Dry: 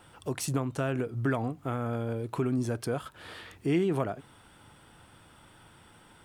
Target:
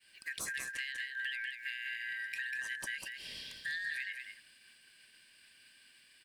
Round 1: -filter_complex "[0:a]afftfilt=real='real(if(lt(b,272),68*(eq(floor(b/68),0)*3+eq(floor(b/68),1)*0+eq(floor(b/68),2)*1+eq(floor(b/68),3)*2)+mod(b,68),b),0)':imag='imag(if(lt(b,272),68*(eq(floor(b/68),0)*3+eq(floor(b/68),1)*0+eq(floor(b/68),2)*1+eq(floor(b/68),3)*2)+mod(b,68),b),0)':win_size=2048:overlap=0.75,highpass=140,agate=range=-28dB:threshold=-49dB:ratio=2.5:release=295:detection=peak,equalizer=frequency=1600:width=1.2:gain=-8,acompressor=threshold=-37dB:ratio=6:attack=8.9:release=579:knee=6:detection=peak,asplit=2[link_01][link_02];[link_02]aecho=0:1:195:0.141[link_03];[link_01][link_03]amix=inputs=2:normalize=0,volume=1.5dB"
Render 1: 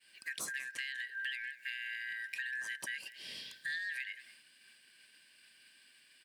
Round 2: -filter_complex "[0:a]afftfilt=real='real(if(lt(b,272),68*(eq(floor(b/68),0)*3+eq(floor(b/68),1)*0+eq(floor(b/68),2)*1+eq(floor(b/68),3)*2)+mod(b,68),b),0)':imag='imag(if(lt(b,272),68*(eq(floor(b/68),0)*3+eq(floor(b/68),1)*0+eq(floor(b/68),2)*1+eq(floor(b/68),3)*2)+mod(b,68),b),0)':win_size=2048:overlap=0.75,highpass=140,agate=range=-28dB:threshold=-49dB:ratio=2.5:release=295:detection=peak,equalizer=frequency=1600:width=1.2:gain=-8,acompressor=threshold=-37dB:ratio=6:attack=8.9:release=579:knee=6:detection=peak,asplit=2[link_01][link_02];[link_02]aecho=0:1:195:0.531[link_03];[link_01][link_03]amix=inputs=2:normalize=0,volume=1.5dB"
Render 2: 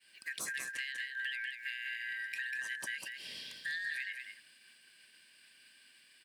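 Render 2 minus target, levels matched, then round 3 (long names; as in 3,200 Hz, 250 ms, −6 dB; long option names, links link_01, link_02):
125 Hz band −4.0 dB
-filter_complex "[0:a]afftfilt=real='real(if(lt(b,272),68*(eq(floor(b/68),0)*3+eq(floor(b/68),1)*0+eq(floor(b/68),2)*1+eq(floor(b/68),3)*2)+mod(b,68),b),0)':imag='imag(if(lt(b,272),68*(eq(floor(b/68),0)*3+eq(floor(b/68),1)*0+eq(floor(b/68),2)*1+eq(floor(b/68),3)*2)+mod(b,68),b),0)':win_size=2048:overlap=0.75,agate=range=-28dB:threshold=-49dB:ratio=2.5:release=295:detection=peak,equalizer=frequency=1600:width=1.2:gain=-8,acompressor=threshold=-37dB:ratio=6:attack=8.9:release=579:knee=6:detection=peak,asplit=2[link_01][link_02];[link_02]aecho=0:1:195:0.531[link_03];[link_01][link_03]amix=inputs=2:normalize=0,volume=1.5dB"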